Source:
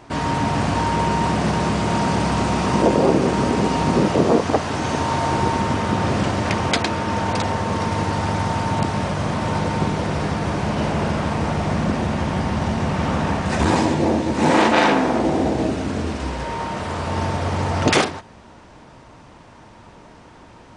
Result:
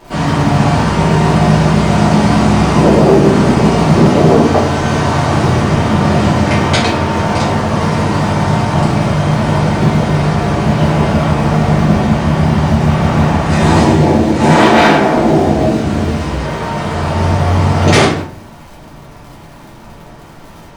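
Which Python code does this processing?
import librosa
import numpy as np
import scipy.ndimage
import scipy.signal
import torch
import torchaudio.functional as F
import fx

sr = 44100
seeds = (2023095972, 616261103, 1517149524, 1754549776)

y = fx.dmg_crackle(x, sr, seeds[0], per_s=92.0, level_db=-33.0)
y = fx.room_shoebox(y, sr, seeds[1], volume_m3=55.0, walls='mixed', distance_m=1.7)
y = fx.quant_float(y, sr, bits=6)
y = y * librosa.db_to_amplitude(-1.0)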